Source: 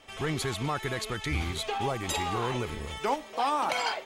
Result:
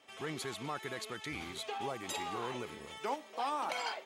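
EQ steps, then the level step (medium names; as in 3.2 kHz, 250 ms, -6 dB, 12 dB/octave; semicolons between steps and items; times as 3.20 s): high-pass 190 Hz 12 dB/octave; -8.0 dB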